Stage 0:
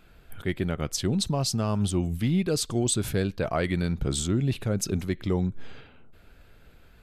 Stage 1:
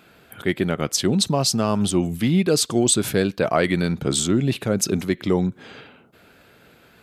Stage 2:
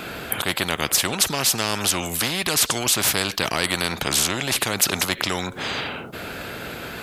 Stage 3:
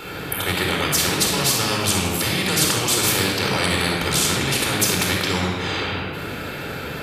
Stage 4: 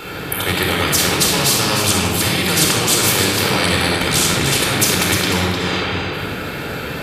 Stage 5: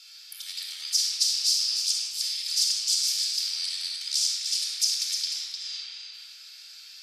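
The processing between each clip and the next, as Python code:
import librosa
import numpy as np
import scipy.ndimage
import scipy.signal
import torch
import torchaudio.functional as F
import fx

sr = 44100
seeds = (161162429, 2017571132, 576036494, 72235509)

y1 = scipy.signal.sosfilt(scipy.signal.butter(2, 170.0, 'highpass', fs=sr, output='sos'), x)
y1 = y1 * librosa.db_to_amplitude(8.0)
y2 = fx.spectral_comp(y1, sr, ratio=4.0)
y2 = y2 * librosa.db_to_amplitude(4.0)
y3 = fx.room_shoebox(y2, sr, seeds[0], volume_m3=2700.0, walls='mixed', distance_m=4.3)
y3 = y3 * librosa.db_to_amplitude(-4.0)
y4 = y3 + 10.0 ** (-7.0 / 20.0) * np.pad(y3, (int(303 * sr / 1000.0), 0))[:len(y3)]
y4 = y4 * librosa.db_to_amplitude(3.5)
y5 = fx.ladder_bandpass(y4, sr, hz=5500.0, resonance_pct=70)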